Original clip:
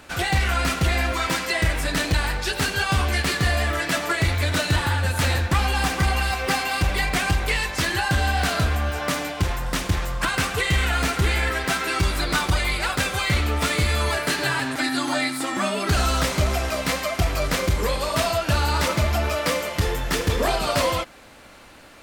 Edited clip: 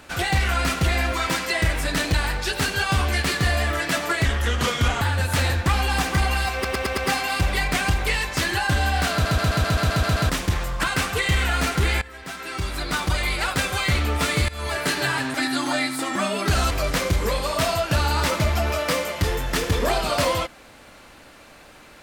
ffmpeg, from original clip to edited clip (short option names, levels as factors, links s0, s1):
-filter_complex "[0:a]asplit=19[s0][s1][s2][s3][s4][s5][s6][s7][s8][s9][s10][s11][s12][s13][s14][s15][s16][s17][s18];[s0]atrim=end=4.254[s19];[s1]atrim=start=4.25:end=4.87,asetpts=PTS-STARTPTS,asetrate=35721,aresample=44100[s20];[s2]atrim=start=4.866:end=6.502[s21];[s3]atrim=start=6.388:end=6.502[s22];[s4]atrim=start=6.388:end=6.502[s23];[s5]atrim=start=6.388:end=6.502[s24];[s6]atrim=start=6.388:end=8.672[s25];[s7]atrim=start=8.538:end=8.672[s26];[s8]atrim=start=8.538:end=8.672[s27];[s9]atrim=start=8.538:end=8.672[s28];[s10]atrim=start=8.538:end=8.672[s29];[s11]atrim=start=8.538:end=8.672[s30];[s12]atrim=start=8.538:end=8.672[s31];[s13]atrim=start=8.538:end=8.672[s32];[s14]atrim=start=8.538:end=8.672[s33];[s15]atrim=start=9.708:end=11.43,asetpts=PTS-STARTPTS,afade=t=out:st=1.718:d=0.004:c=hsin:silence=0.0841395[s34];[s16]atrim=start=11.43:end=13.9,asetpts=PTS-STARTPTS,afade=t=in:d=1.34:silence=0.0841395,afade=t=out:st=2.466:d=0.004:c=hsin:silence=0.0891251[s35];[s17]atrim=start=13.9:end=16.122,asetpts=PTS-STARTPTS,afade=t=in:d=0.33:silence=0.0891251[s36];[s18]atrim=start=17.278[s37];[s19][s20]acrossfade=d=0.004:c1=hsin:c2=hsin[s38];[s38][s21]acrossfade=d=0.004:c1=hsin:c2=hsin[s39];[s39][s22]acrossfade=d=0.004:c1=hsin:c2=hsin[s40];[s40][s23]acrossfade=d=0.004:c1=hsin:c2=hsin[s41];[s41][s24]acrossfade=d=0.004:c1=hsin:c2=hsin[s42];[s42][s25]acrossfade=d=0.004:c1=hsin:c2=hsin[s43];[s43][s26]acrossfade=d=0.004:c1=hsin:c2=hsin[s44];[s44][s27]acrossfade=d=0.004:c1=hsin:c2=hsin[s45];[s45][s28]acrossfade=d=0.004:c1=hsin:c2=hsin[s46];[s46][s29]acrossfade=d=0.004:c1=hsin:c2=hsin[s47];[s47][s30]acrossfade=d=0.004:c1=hsin:c2=hsin[s48];[s48][s31]acrossfade=d=0.004:c1=hsin:c2=hsin[s49];[s49][s32]acrossfade=d=0.004:c1=hsin:c2=hsin[s50];[s50][s33]acrossfade=d=0.004:c1=hsin:c2=hsin[s51];[s34][s35][s36]concat=n=3:v=0:a=1[s52];[s51][s52]acrossfade=d=0.004:c1=hsin:c2=hsin[s53];[s53][s37]acrossfade=d=0.004:c1=hsin:c2=hsin"